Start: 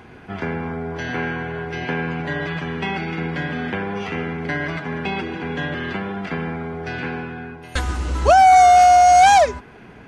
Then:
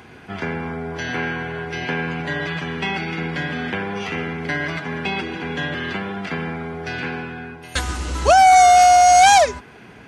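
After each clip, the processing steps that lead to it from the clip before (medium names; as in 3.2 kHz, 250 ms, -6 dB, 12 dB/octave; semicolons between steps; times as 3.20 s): high-pass 57 Hz; treble shelf 2.5 kHz +8 dB; trim -1 dB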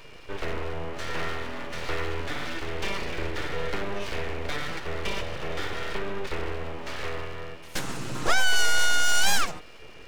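peaking EQ 220 Hz +12.5 dB 0.54 oct; whistle 2.6 kHz -44 dBFS; full-wave rectifier; trim -6 dB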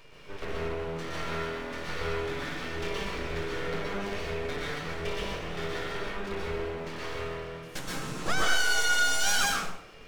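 plate-style reverb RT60 0.66 s, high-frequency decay 0.75×, pre-delay 110 ms, DRR -3 dB; trim -7 dB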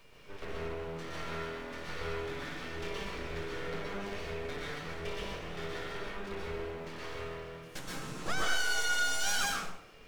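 added noise pink -65 dBFS; trim -5.5 dB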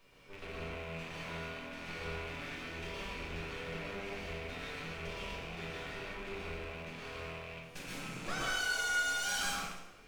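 rattle on loud lows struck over -48 dBFS, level -31 dBFS; two-slope reverb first 0.69 s, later 2.1 s, from -24 dB, DRR -1.5 dB; trim -7 dB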